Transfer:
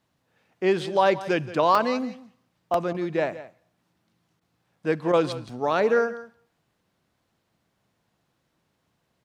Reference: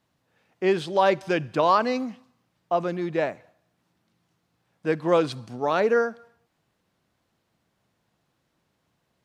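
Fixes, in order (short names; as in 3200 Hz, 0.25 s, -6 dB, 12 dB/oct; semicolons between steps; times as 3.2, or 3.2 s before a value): interpolate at 1.75/2.74/4.44/4.76/5.49, 2.8 ms; interpolate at 2.93/4.4/5.12, 12 ms; inverse comb 0.173 s -15.5 dB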